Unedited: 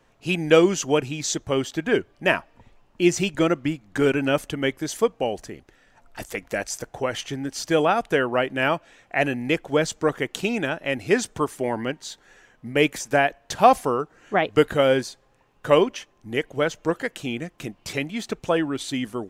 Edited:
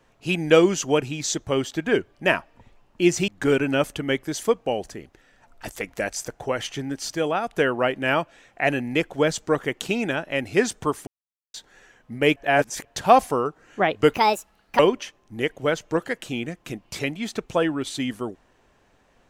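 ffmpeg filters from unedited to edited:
-filter_complex "[0:a]asplit=10[a][b][c][d][e][f][g][h][i][j];[a]atrim=end=3.282[k];[b]atrim=start=3.818:end=7.692[l];[c]atrim=start=7.688:end=8.072,asetpts=PTS-STARTPTS,volume=-4.5dB[m];[d]atrim=start=8.068:end=11.61,asetpts=PTS-STARTPTS,afade=t=out:st=3.538:d=0.004:c=hsin[n];[e]atrim=start=11.61:end=12.08,asetpts=PTS-STARTPTS,volume=0[o];[f]atrim=start=12.08:end=12.902,asetpts=PTS-STARTPTS,afade=t=in:d=0.004:c=hsin[p];[g]atrim=start=12.898:end=13.392,asetpts=PTS-STARTPTS,areverse[q];[h]atrim=start=13.388:end=14.684[r];[i]atrim=start=14.68:end=15.73,asetpts=PTS-STARTPTS,asetrate=71001,aresample=44100[s];[j]atrim=start=15.726[t];[k][l]acrossfade=d=0.004:c1=hsin:c2=hsin[u];[u][m]acrossfade=d=0.004:c1=hsin:c2=hsin[v];[n][o][p]concat=n=3:v=0:a=1[w];[v][w]acrossfade=d=0.004:c1=hsin:c2=hsin[x];[x][q]acrossfade=d=0.004:c1=hsin:c2=hsin[y];[y][r]acrossfade=d=0.004:c1=hsin:c2=hsin[z];[z][s]acrossfade=d=0.004:c1=hsin:c2=hsin[aa];[aa][t]acrossfade=d=0.004:c1=hsin:c2=hsin"

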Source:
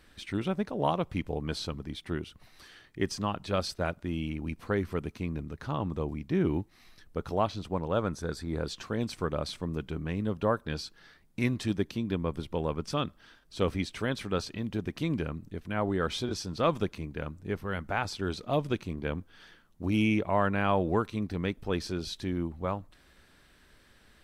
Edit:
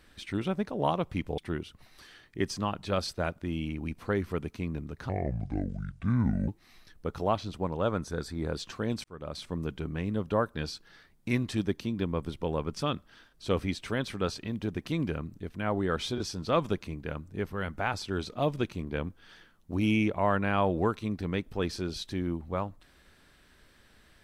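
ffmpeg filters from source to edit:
-filter_complex "[0:a]asplit=5[a][b][c][d][e];[a]atrim=end=1.382[f];[b]atrim=start=1.988:end=5.704[g];[c]atrim=start=5.7:end=6.59,asetpts=PTS-STARTPTS,asetrate=28224,aresample=44100[h];[d]atrim=start=6.586:end=9.15,asetpts=PTS-STARTPTS,afade=t=out:st=2.56:d=0.004:c=hsin[i];[e]atrim=start=9.15,asetpts=PTS-STARTPTS,afade=t=in:d=0.5[j];[f][g]acrossfade=d=0.004:c1=hsin:c2=hsin[k];[k][h]acrossfade=d=0.004:c1=hsin:c2=hsin[l];[i][j]concat=n=2:v=0:a=1[m];[l][m]acrossfade=d=0.004:c1=hsin:c2=hsin"

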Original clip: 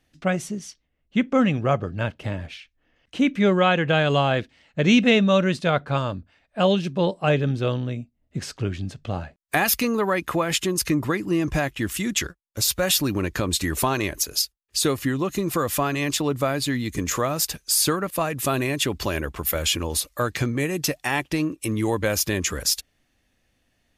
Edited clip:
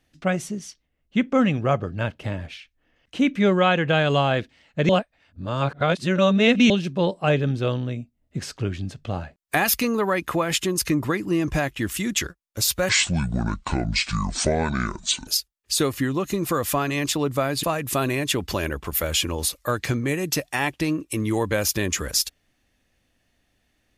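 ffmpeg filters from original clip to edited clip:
-filter_complex "[0:a]asplit=6[a][b][c][d][e][f];[a]atrim=end=4.892[g];[b]atrim=start=4.888:end=6.702,asetpts=PTS-STARTPTS,areverse[h];[c]atrim=start=6.698:end=12.894[i];[d]atrim=start=12.89:end=14.32,asetpts=PTS-STARTPTS,asetrate=26460,aresample=44100[j];[e]atrim=start=14.316:end=16.682[k];[f]atrim=start=18.148[l];[g][h]acrossfade=d=0.004:c1=hsin:c2=hsin[m];[m][i]acrossfade=d=0.004:c1=hsin:c2=hsin[n];[n][j]acrossfade=d=0.004:c1=hsin:c2=hsin[o];[o][k]acrossfade=d=0.004:c1=hsin:c2=hsin[p];[p][l]acrossfade=d=0.004:c1=hsin:c2=hsin"

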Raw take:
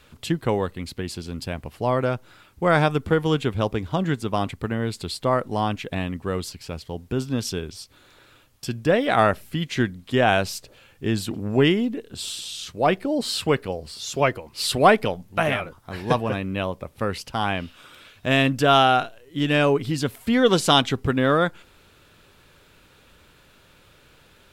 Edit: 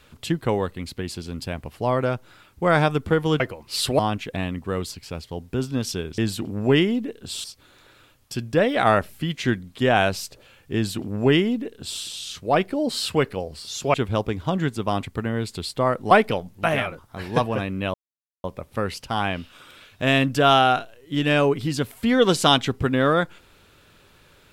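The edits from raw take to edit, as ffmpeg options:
-filter_complex "[0:a]asplit=8[a][b][c][d][e][f][g][h];[a]atrim=end=3.402[i];[b]atrim=start=14.258:end=14.852[j];[c]atrim=start=5.568:end=7.762[k];[d]atrim=start=11.068:end=12.332[l];[e]atrim=start=7.758:end=14.262[m];[f]atrim=start=3.398:end=5.572[n];[g]atrim=start=14.848:end=16.68,asetpts=PTS-STARTPTS,afade=t=out:st=1.828:d=0.004:c=hsin,apad=pad_dur=0.5[o];[h]atrim=start=16.68,asetpts=PTS-STARTPTS,afade=t=in:d=0.004:c=hsin[p];[i][j]acrossfade=d=0.004:c1=hsin:c2=hsin[q];[q][k]acrossfade=d=0.004:c1=hsin:c2=hsin[r];[r][l]acrossfade=d=0.004:c1=hsin:c2=hsin[s];[s][m]acrossfade=d=0.004:c1=hsin:c2=hsin[t];[t][n]acrossfade=d=0.004:c1=hsin:c2=hsin[u];[o][p]concat=n=2:v=0:a=1[v];[u][v]acrossfade=d=0.004:c1=hsin:c2=hsin"

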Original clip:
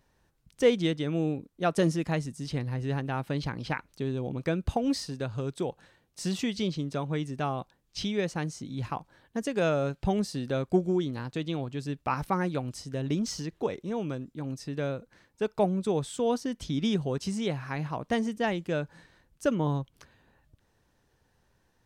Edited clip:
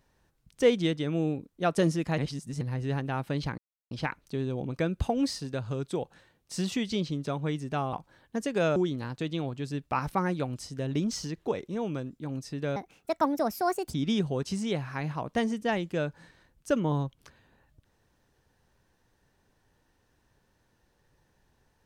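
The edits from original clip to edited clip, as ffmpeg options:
-filter_complex "[0:a]asplit=8[a][b][c][d][e][f][g][h];[a]atrim=end=2.182[i];[b]atrim=start=2.178:end=2.612,asetpts=PTS-STARTPTS,areverse[j];[c]atrim=start=2.608:end=3.58,asetpts=PTS-STARTPTS,afade=t=out:st=0.968:d=0.004:c=hsin,apad=pad_dur=0.33[k];[d]atrim=start=3.58:end=7.602,asetpts=PTS-STARTPTS,afade=t=in:d=0.004:c=hsin[l];[e]atrim=start=8.938:end=9.772[m];[f]atrim=start=10.908:end=14.914[n];[g]atrim=start=14.91:end=16.69,asetpts=PTS-STARTPTS,asetrate=66591,aresample=44100,atrim=end_sample=51985,asetpts=PTS-STARTPTS[o];[h]atrim=start=16.686[p];[i][j]acrossfade=d=0.004:c1=hsin:c2=hsin[q];[k][l]concat=n=2:v=0:a=1[r];[q][r]acrossfade=d=0.004:c1=hsin:c2=hsin[s];[s][m]acrossfade=d=0.004:c1=hsin:c2=hsin[t];[t][n]acrossfade=d=0.004:c1=hsin:c2=hsin[u];[u][o]acrossfade=d=0.004:c1=hsin:c2=hsin[v];[v][p]acrossfade=d=0.004:c1=hsin:c2=hsin"

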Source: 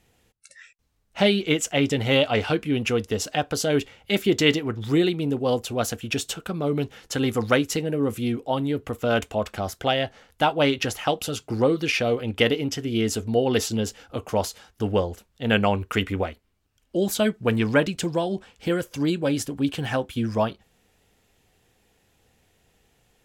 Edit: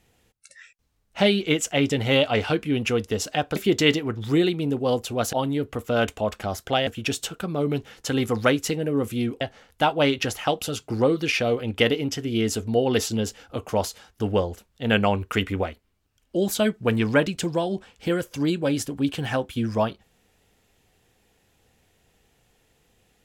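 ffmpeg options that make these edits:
-filter_complex "[0:a]asplit=5[a][b][c][d][e];[a]atrim=end=3.562[f];[b]atrim=start=4.158:end=5.932[g];[c]atrim=start=8.468:end=10.012[h];[d]atrim=start=5.928:end=8.472[i];[e]atrim=start=10.008[j];[f][g]acrossfade=d=0.004:c1=hsin:c2=hsin[k];[k][h]acrossfade=d=0.004:c1=hsin:c2=hsin[l];[l][i]acrossfade=d=0.004:c1=hsin:c2=hsin[m];[m][j]acrossfade=d=0.004:c1=hsin:c2=hsin"

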